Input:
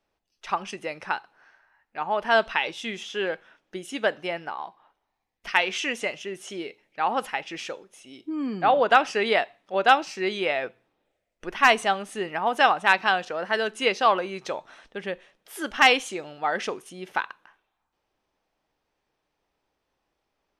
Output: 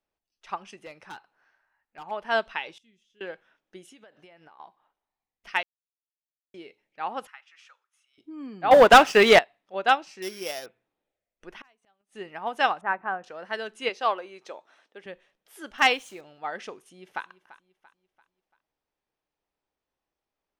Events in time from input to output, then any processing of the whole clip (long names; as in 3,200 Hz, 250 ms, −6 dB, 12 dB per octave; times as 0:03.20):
0:00.76–0:02.11: gain into a clipping stage and back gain 26 dB
0:02.78–0:03.21: guitar amp tone stack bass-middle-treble 10-0-1
0:03.86–0:04.60: downward compressor 16 to 1, threshold −38 dBFS
0:05.63–0:06.54: silence
0:07.27–0:08.18: four-pole ladder high-pass 1,100 Hz, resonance 55%
0:08.71–0:09.39: leveller curve on the samples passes 3
0:10.22–0:10.66: samples sorted by size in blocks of 8 samples
0:11.53–0:12.17: gate with flip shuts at −23 dBFS, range −35 dB
0:12.81–0:13.24: low-pass filter 1,600 Hz 24 dB per octave
0:13.89–0:15.06: Chebyshev high-pass filter 340 Hz
0:15.78–0:16.21: centre clipping without the shift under −40.5 dBFS
0:16.83–0:17.25: delay throw 340 ms, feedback 45%, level −15 dB
whole clip: expander for the loud parts 1.5 to 1, over −29 dBFS